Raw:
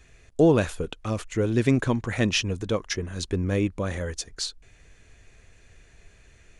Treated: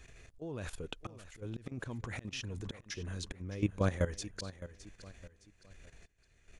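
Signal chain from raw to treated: dynamic bell 110 Hz, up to +4 dB, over -36 dBFS, Q 1.7; slow attack 697 ms; level held to a coarse grid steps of 14 dB; feedback delay 613 ms, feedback 36%, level -14.5 dB; trim +1.5 dB

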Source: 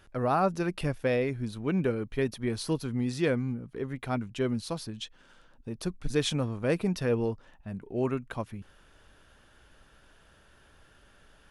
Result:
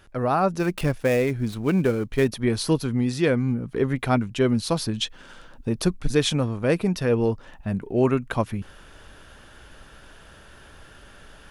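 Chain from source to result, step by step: 0.59–2.28 s: dead-time distortion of 0.074 ms; gain riding within 5 dB 0.5 s; trim +7.5 dB

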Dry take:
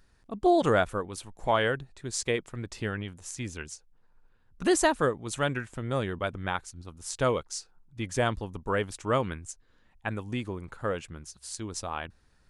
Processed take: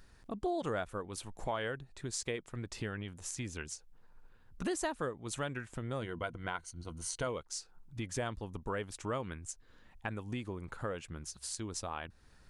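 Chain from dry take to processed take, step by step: 6.01–7.27 s: rippled EQ curve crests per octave 1.9, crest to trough 9 dB; compression 2.5:1, threshold -44 dBFS, peak gain reduction 17 dB; trim +3.5 dB

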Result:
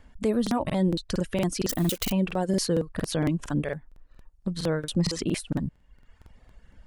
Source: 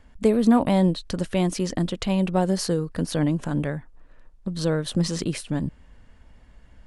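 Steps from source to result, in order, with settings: 1.69–2.10 s: zero-crossing glitches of -19 dBFS; reverb removal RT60 0.97 s; peak limiter -15.5 dBFS, peak gain reduction 7.5 dB; crackling interface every 0.23 s, samples 2048, repeat, from 0.42 s

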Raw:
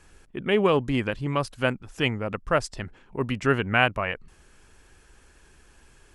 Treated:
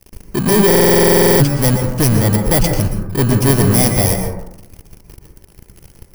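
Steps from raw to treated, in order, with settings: bit-reversed sample order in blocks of 32 samples; bass shelf 300 Hz +8.5 dB; waveshaping leveller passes 5; plate-style reverb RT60 0.87 s, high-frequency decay 0.3×, pre-delay 105 ms, DRR 4 dB; buffer glitch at 0.66 s, samples 2048, times 15; trim -3.5 dB

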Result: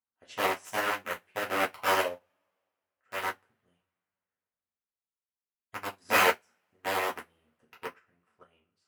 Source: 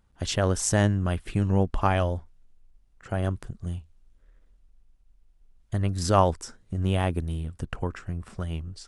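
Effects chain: integer overflow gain 16.5 dB; high-order bell 5.6 kHz -9.5 dB; wow and flutter 22 cents; frequency weighting A; two-slope reverb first 0.31 s, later 2.8 s, from -28 dB, DRR -4 dB; upward expansion 2.5:1, over -38 dBFS

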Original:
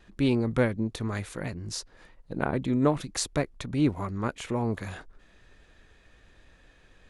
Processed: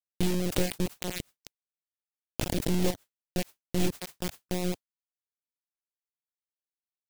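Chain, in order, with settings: median filter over 9 samples; monotone LPC vocoder at 8 kHz 180 Hz; doubling 16 ms -14 dB; on a send at -15 dB: reverberation RT60 0.60 s, pre-delay 3 ms; on the sum: bit crusher 4-bit; reverb removal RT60 0.51 s; peaking EQ 1.2 kHz -14.5 dB 1.5 oct; modulation noise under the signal 34 dB; swell ahead of each attack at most 100 dB/s; trim -1.5 dB

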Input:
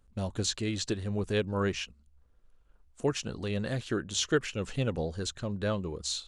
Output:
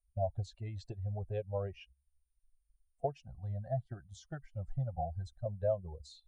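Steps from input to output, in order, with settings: expander on every frequency bin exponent 2; 3.25–5.46 s: static phaser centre 1.1 kHz, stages 4; compression 4:1, threshold -40 dBFS, peak gain reduction 12.5 dB; whistle 9.2 kHz -74 dBFS; FFT filter 140 Hz 0 dB, 210 Hz -17 dB, 340 Hz -14 dB, 690 Hz +12 dB, 1.1 kHz -16 dB, 2.6 kHz -15 dB, 12 kHz -29 dB; trim +7.5 dB

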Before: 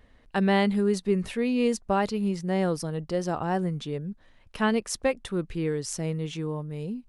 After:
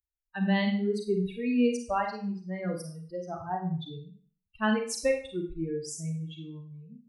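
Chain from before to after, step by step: expander on every frequency bin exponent 3; Schroeder reverb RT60 0.44 s, combs from 33 ms, DRR 2.5 dB

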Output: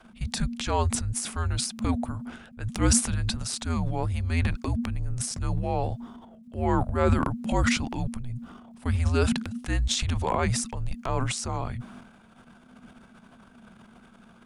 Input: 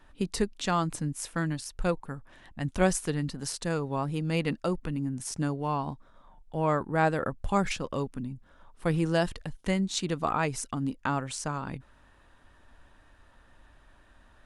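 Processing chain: transient shaper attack -6 dB, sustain +10 dB; frequency shift -250 Hz; trim +3 dB

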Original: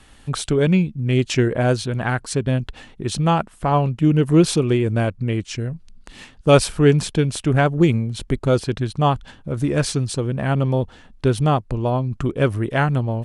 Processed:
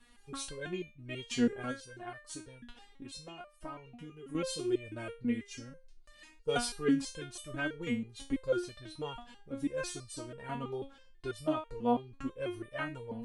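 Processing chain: 1.71–4.35 s: compression 3:1, threshold -25 dBFS, peak gain reduction 10.5 dB; resonator arpeggio 6.1 Hz 240–600 Hz; trim +1 dB

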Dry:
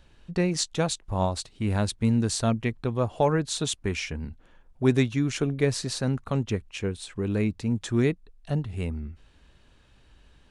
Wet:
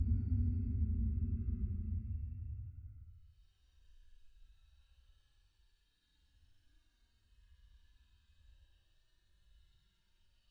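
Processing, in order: expander on every frequency bin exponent 1.5; Paulstretch 16×, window 0.05 s, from 8.96 s; high-order bell 6.3 kHz +10.5 dB; trim +1.5 dB

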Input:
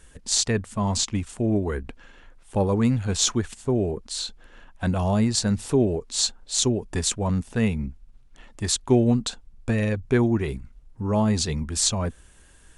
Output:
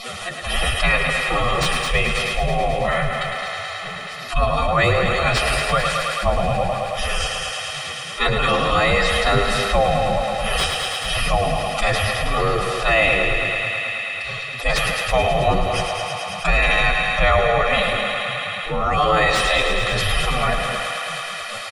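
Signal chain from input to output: high-pass 45 Hz 12 dB/octave; hum notches 50/100 Hz; spectral gate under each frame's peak -20 dB weak; tone controls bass +9 dB, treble +15 dB; comb 1.6 ms, depth 71%; in parallel at -1 dB: level held to a coarse grid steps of 12 dB; on the sum: time stretch by phase-locked vocoder 1.7×; sine folder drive 11 dB, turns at -3 dBFS; distance through air 410 m; thinning echo 108 ms, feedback 83%, high-pass 370 Hz, level -8.5 dB; on a send at -13 dB: reverberation, pre-delay 3 ms; on the sum: level flattener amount 50%

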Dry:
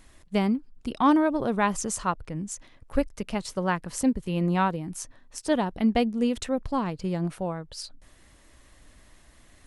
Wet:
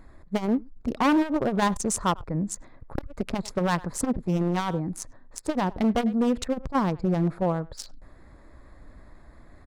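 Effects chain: local Wiener filter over 15 samples; in parallel at -1 dB: gain riding within 3 dB 2 s; on the sum: speakerphone echo 100 ms, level -22 dB; hard clipper -17 dBFS, distortion -9 dB; transformer saturation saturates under 130 Hz

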